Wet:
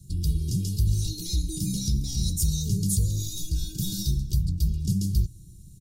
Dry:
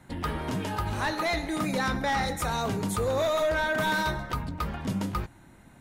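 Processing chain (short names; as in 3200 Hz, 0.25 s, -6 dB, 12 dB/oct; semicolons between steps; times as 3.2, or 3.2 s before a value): elliptic band-stop 210–5000 Hz, stop band 50 dB; comb 2.1 ms, depth 96%; small resonant body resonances 380/1100 Hz, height 7 dB, ringing for 25 ms; gain +7 dB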